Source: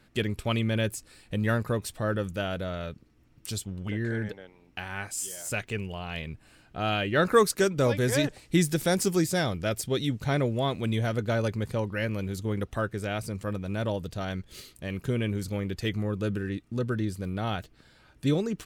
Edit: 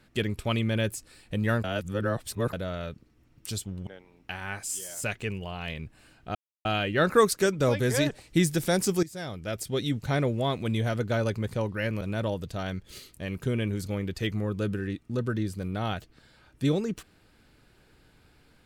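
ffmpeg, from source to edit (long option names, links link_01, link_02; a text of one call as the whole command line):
ffmpeg -i in.wav -filter_complex "[0:a]asplit=7[link_01][link_02][link_03][link_04][link_05][link_06][link_07];[link_01]atrim=end=1.642[link_08];[link_02]atrim=start=1.638:end=2.532,asetpts=PTS-STARTPTS,areverse[link_09];[link_03]atrim=start=2.528:end=3.872[link_10];[link_04]atrim=start=4.348:end=6.83,asetpts=PTS-STARTPTS,afade=type=out:start_time=2.478:duration=0.004:curve=hsin,apad=pad_dur=0.3[link_11];[link_05]atrim=start=6.83:end=9.21,asetpts=PTS-STARTPTS,afade=type=in:duration=0.004:curve=hsin,afade=type=out:start_time=2.376:duration=0.004:curve=hsin:silence=0.125893[link_12];[link_06]atrim=start=9.21:end=12.192,asetpts=PTS-STARTPTS,afade=type=in:duration=0.85:silence=0.125893[link_13];[link_07]atrim=start=13.628[link_14];[link_08][link_09]acrossfade=duration=0.004:curve1=hsin:curve2=hsin[link_15];[link_15][link_10]acrossfade=duration=0.004:curve1=hsin:curve2=hsin[link_16];[link_11][link_12][link_13]concat=n=3:v=0:a=1[link_17];[link_16][link_17]acrossfade=duration=0.004:curve1=hsin:curve2=hsin[link_18];[link_18][link_14]acrossfade=duration=0.004:curve1=hsin:curve2=hsin" out.wav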